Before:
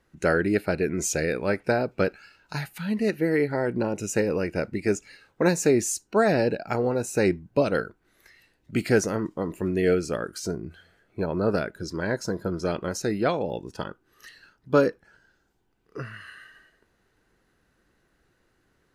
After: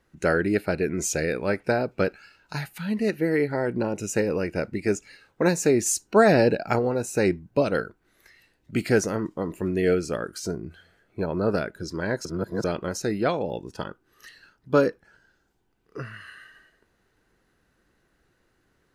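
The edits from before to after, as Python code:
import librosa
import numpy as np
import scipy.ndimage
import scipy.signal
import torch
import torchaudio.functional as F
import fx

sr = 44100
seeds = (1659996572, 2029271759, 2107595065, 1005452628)

y = fx.edit(x, sr, fx.clip_gain(start_s=5.86, length_s=0.93, db=4.0),
    fx.reverse_span(start_s=12.25, length_s=0.39), tone=tone)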